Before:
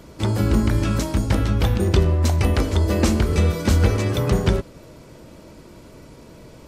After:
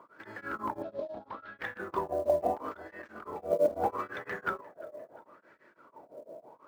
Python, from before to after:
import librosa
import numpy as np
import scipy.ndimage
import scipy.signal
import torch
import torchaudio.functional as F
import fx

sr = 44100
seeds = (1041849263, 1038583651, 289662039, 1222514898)

y = fx.peak_eq(x, sr, hz=350.0, db=11.5, octaves=3.0)
y = fx.over_compress(y, sr, threshold_db=-17.0, ratio=-1.0, at=(2.57, 3.72), fade=0.02)
y = fx.wah_lfo(y, sr, hz=0.76, low_hz=590.0, high_hz=1800.0, q=11.0)
y = fx.quant_float(y, sr, bits=4)
y = fx.ladder_lowpass(y, sr, hz=4500.0, resonance_pct=55, at=(0.82, 1.59))
y = fx.echo_feedback(y, sr, ms=350, feedback_pct=58, wet_db=-24)
y = y * np.abs(np.cos(np.pi * 6.0 * np.arange(len(y)) / sr))
y = y * 10.0 ** (4.5 / 20.0)